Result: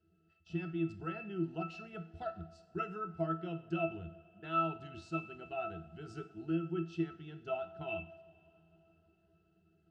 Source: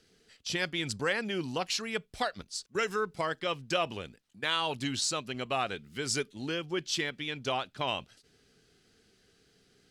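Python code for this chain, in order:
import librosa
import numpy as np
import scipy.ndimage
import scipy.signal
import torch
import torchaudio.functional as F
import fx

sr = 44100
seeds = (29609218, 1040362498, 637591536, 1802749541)

y = fx.rider(x, sr, range_db=10, speed_s=2.0)
y = fx.octave_resonator(y, sr, note='E', decay_s=0.19)
y = fx.rev_double_slope(y, sr, seeds[0], early_s=0.55, late_s=3.9, knee_db=-18, drr_db=9.0)
y = F.gain(torch.from_numpy(y), 6.0).numpy()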